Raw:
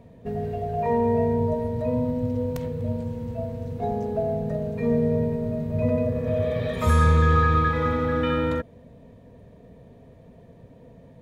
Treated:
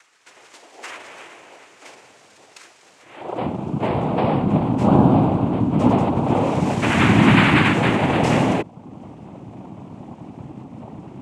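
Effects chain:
upward compression, threshold −37 dBFS
high-pass filter sweep 2,400 Hz → 140 Hz, 0:02.97–0:03.53
cochlear-implant simulation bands 4
level +4.5 dB

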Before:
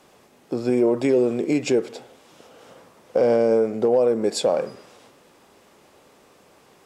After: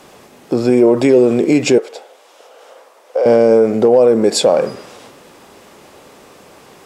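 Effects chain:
in parallel at +1.5 dB: brickwall limiter −18.5 dBFS, peak gain reduction 9.5 dB
0:01.78–0:03.26: on the sum: four-pole ladder high-pass 420 Hz, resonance 30%
level +5 dB

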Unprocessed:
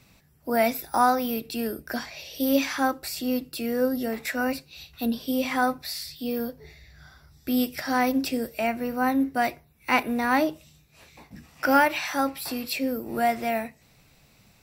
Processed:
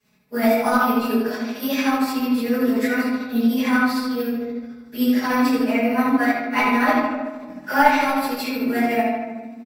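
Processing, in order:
mu-law and A-law mismatch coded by A
high-pass filter 120 Hz 12 dB per octave
comb filter 4.7 ms, depth 68%
far-end echo of a speakerphone 90 ms, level −7 dB
convolution reverb RT60 2.1 s, pre-delay 3 ms, DRR −19 dB
time stretch by overlap-add 0.66×, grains 150 ms
level −16 dB

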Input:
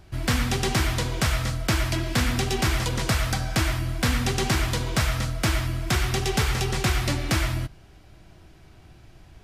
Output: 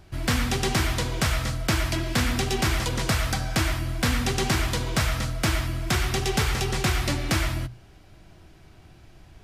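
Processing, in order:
mains-hum notches 60/120 Hz

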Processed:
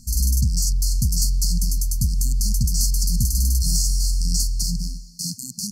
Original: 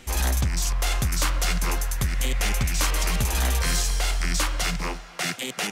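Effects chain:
linear-phase brick-wall band-stop 250–4,200 Hz
level +4.5 dB

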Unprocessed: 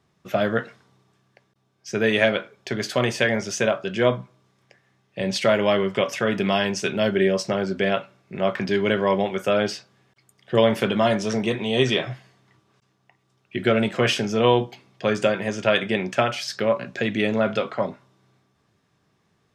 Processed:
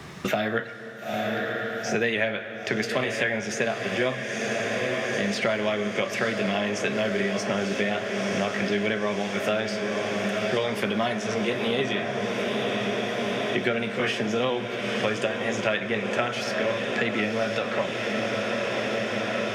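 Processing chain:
pitch shifter swept by a sawtooth +1 semitone, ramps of 537 ms
parametric band 2,000 Hz +5 dB 0.93 octaves
feedback delay with all-pass diffusion 932 ms, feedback 78%, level −9.5 dB
dense smooth reverb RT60 1.5 s, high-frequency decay 0.95×, DRR 12 dB
multiband upward and downward compressor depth 100%
level −5 dB

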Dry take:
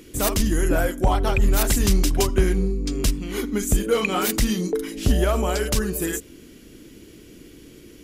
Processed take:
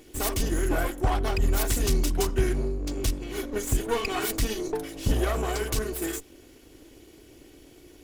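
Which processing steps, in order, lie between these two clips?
lower of the sound and its delayed copy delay 2.7 ms
level −4.5 dB

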